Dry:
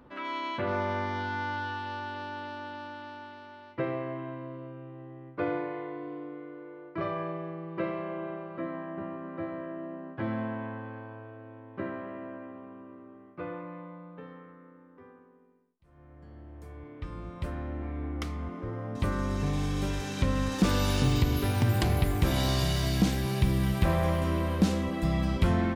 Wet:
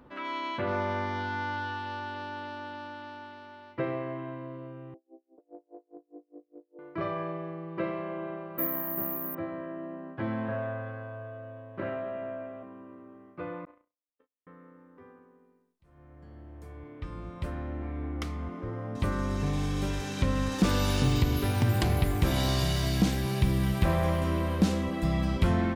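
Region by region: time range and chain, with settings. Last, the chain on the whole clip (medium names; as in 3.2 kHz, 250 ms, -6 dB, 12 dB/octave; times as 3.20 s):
4.94–6.79 s: elliptic band-pass 280–750 Hz, stop band 50 dB + compression, threshold -40 dBFS + logarithmic tremolo 4.9 Hz, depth 37 dB
8.58–9.35 s: treble shelf 3.6 kHz +6 dB + careless resampling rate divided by 3×, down filtered, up zero stuff
10.45–12.63 s: doubling 29 ms -3.5 dB + flutter echo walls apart 6.5 m, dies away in 0.38 s + loudspeaker Doppler distortion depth 0.13 ms
13.65–14.47 s: steep high-pass 240 Hz 72 dB/octave + gate -42 dBFS, range -58 dB
whole clip: none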